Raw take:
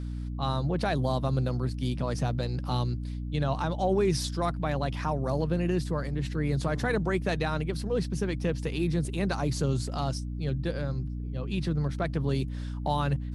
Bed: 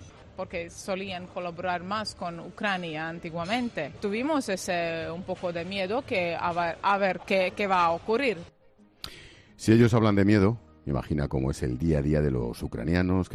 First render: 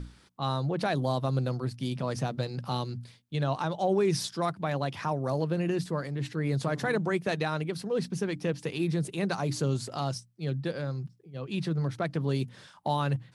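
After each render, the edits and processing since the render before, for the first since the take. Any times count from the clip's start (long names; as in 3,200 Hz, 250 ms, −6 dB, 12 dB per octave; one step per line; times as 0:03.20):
mains-hum notches 60/120/180/240/300 Hz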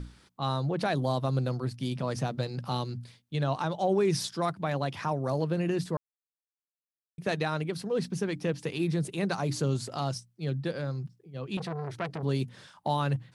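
0:05.97–0:07.18: silence
0:11.57–0:12.23: saturating transformer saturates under 1,200 Hz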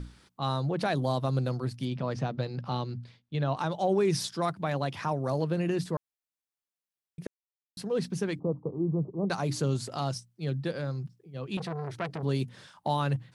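0:01.85–0:03.57: high-frequency loss of the air 130 metres
0:07.27–0:07.77: silence
0:08.39–0:09.30: Butterworth low-pass 1,200 Hz 96 dB per octave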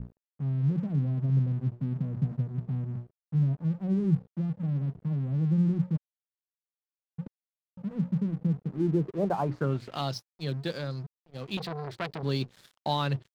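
low-pass filter sweep 180 Hz → 4,400 Hz, 0:08.63–0:10.13
dead-zone distortion −47 dBFS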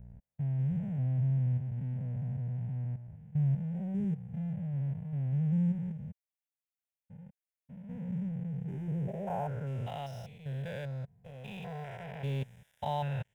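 spectrum averaged block by block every 200 ms
phaser with its sweep stopped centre 1,200 Hz, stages 6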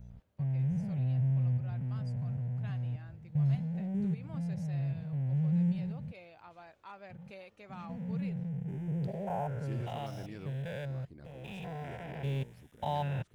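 mix in bed −25.5 dB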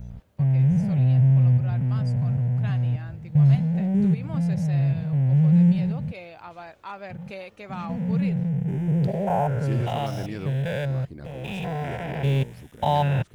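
level +12 dB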